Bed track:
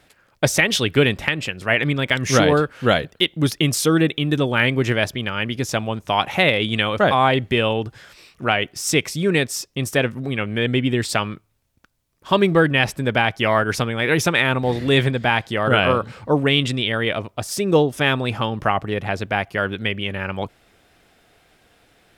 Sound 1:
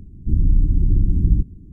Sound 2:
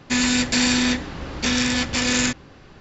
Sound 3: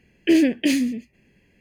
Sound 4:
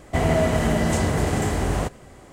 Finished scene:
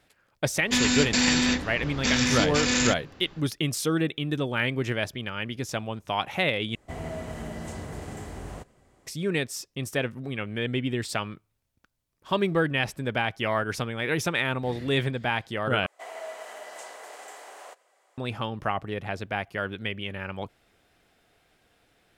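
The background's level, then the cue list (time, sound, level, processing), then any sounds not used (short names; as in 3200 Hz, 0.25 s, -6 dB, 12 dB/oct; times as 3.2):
bed track -8.5 dB
0.61 add 2 -3.5 dB
6.75 replace with 4 -15.5 dB
15.86 replace with 4 -14.5 dB + HPF 560 Hz 24 dB/oct
not used: 1, 3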